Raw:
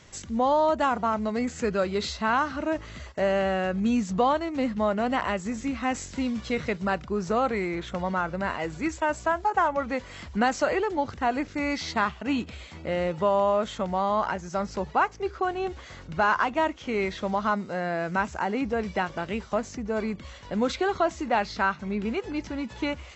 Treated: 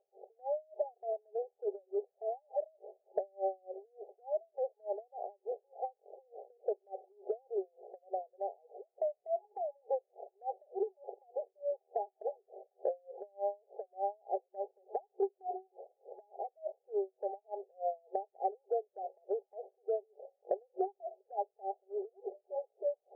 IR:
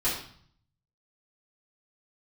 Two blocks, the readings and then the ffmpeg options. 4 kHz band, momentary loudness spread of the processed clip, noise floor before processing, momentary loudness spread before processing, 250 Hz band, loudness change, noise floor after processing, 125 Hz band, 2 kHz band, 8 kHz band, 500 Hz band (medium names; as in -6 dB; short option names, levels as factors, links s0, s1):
under -40 dB, 13 LU, -45 dBFS, 7 LU, under -20 dB, -12.5 dB, -83 dBFS, under -40 dB, under -40 dB, no reading, -9.0 dB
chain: -af "acontrast=24,alimiter=limit=0.158:level=0:latency=1:release=86,afftfilt=real='re*between(b*sr/4096,370,830)':imag='im*between(b*sr/4096,370,830)':win_size=4096:overlap=0.75,crystalizer=i=8.5:c=0,acompressor=threshold=0.0251:ratio=4,aeval=exprs='val(0)*pow(10,-37*(0.5-0.5*cos(2*PI*3.4*n/s))/20)':c=same,volume=1.33"